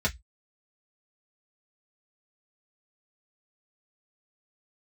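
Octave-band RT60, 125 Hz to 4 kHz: 0.25, 0.10, 0.10, 0.10, 0.15, 0.15 seconds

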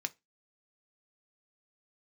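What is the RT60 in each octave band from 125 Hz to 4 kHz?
0.20, 0.25, 0.20, 0.20, 0.20, 0.20 seconds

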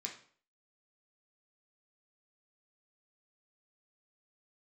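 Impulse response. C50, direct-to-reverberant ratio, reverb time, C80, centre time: 8.0 dB, −0.5 dB, 0.50 s, 12.5 dB, 20 ms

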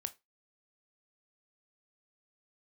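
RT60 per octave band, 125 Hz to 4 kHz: 0.20, 0.20, 0.20, 0.20, 0.20, 0.20 seconds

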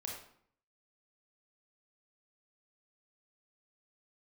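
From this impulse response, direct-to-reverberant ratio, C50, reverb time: −1.5 dB, 2.5 dB, 0.60 s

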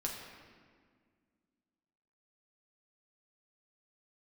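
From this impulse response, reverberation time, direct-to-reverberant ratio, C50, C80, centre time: 1.8 s, −1.5 dB, 3.0 dB, 4.5 dB, 66 ms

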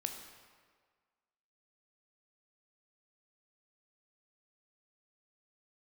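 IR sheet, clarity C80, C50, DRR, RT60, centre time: 7.5 dB, 6.0 dB, 4.0 dB, 1.7 s, 36 ms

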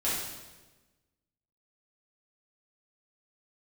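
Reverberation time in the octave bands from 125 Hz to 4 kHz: 1.5, 1.4, 1.3, 1.1, 1.1, 1.0 seconds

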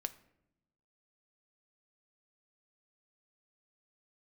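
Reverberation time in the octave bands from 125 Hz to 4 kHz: 1.3, 1.3, 0.95, 0.70, 0.65, 0.45 seconds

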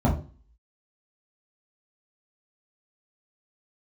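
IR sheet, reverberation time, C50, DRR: 0.35 s, 8.0 dB, −5.5 dB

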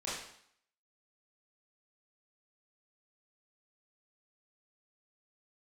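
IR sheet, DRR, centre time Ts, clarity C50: −9.5 dB, 60 ms, 1.0 dB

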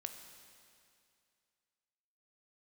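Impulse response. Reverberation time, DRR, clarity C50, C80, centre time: 2.4 s, 6.0 dB, 7.5 dB, 8.0 dB, 36 ms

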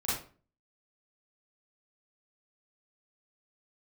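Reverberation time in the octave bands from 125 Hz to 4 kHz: 0.55, 0.50, 0.40, 0.40, 0.35, 0.30 seconds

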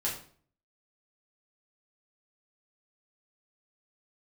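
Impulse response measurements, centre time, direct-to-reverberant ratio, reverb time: 30 ms, −5.5 dB, 0.50 s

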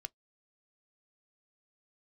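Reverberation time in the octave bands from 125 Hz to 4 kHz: 0.15, 0.10, 0.15, 0.10, 0.10, 0.10 seconds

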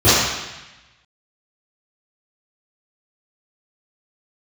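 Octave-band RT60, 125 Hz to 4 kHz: 1.2, 1.0, 0.95, 1.1, 1.2, 1.1 seconds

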